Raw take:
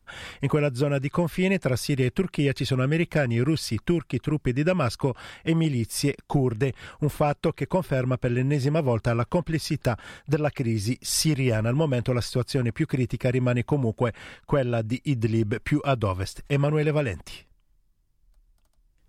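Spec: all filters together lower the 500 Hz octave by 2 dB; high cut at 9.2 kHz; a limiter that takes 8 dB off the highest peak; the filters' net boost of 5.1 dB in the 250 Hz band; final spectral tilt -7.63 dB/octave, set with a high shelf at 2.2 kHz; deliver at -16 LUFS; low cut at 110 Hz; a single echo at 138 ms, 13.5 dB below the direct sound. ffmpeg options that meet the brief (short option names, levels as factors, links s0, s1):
-af "highpass=110,lowpass=9200,equalizer=f=250:t=o:g=9,equalizer=f=500:t=o:g=-5.5,highshelf=f=2200:g=-6,alimiter=limit=0.15:level=0:latency=1,aecho=1:1:138:0.211,volume=3.55"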